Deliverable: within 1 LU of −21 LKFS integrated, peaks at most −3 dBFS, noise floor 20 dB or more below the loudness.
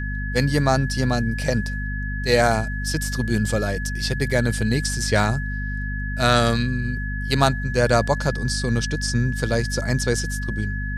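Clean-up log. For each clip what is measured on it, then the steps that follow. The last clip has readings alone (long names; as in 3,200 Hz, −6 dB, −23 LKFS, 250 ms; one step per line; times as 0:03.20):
mains hum 50 Hz; hum harmonics up to 250 Hz; level of the hum −25 dBFS; interfering tone 1,700 Hz; level of the tone −31 dBFS; integrated loudness −22.5 LKFS; sample peak −2.0 dBFS; target loudness −21.0 LKFS
→ mains-hum notches 50/100/150/200/250 Hz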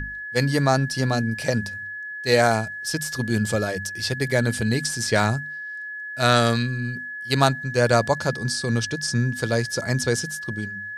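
mains hum none found; interfering tone 1,700 Hz; level of the tone −31 dBFS
→ notch filter 1,700 Hz, Q 30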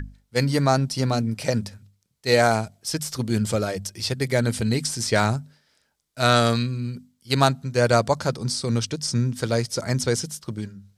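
interfering tone none found; integrated loudness −23.5 LKFS; sample peak −3.0 dBFS; target loudness −21.0 LKFS
→ level +2.5 dB
brickwall limiter −3 dBFS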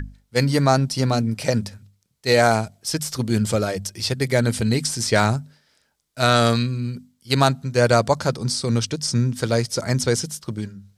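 integrated loudness −21.0 LKFS; sample peak −3.0 dBFS; background noise floor −68 dBFS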